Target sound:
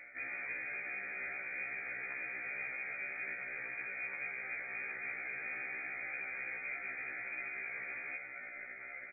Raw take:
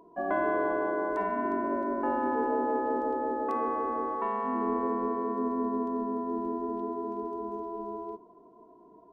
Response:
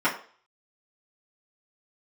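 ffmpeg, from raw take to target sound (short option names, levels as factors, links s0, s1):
-filter_complex "[0:a]tremolo=f=220:d=0.889,asplit=2[s0][s1];[s1]adelay=1108,volume=0.0891,highshelf=f=4000:g=-24.9[s2];[s0][s2]amix=inputs=2:normalize=0,acrusher=samples=30:mix=1:aa=0.000001,areverse,acompressor=threshold=0.00794:ratio=4,areverse,aeval=exprs='(mod(100*val(0)+1,2)-1)/100':c=same,alimiter=level_in=15:limit=0.0631:level=0:latency=1:release=19,volume=0.0668,lowshelf=f=70:g=7,lowpass=f=2100:t=q:w=0.5098,lowpass=f=2100:t=q:w=0.6013,lowpass=f=2100:t=q:w=0.9,lowpass=f=2100:t=q:w=2.563,afreqshift=-2500,asplit=2[s3][s4];[1:a]atrim=start_sample=2205,asetrate=22050,aresample=44100[s5];[s4][s5]afir=irnorm=-1:irlink=0,volume=0.0473[s6];[s3][s6]amix=inputs=2:normalize=0,afftfilt=real='re*1.73*eq(mod(b,3),0)':imag='im*1.73*eq(mod(b,3),0)':win_size=2048:overlap=0.75,volume=4.22"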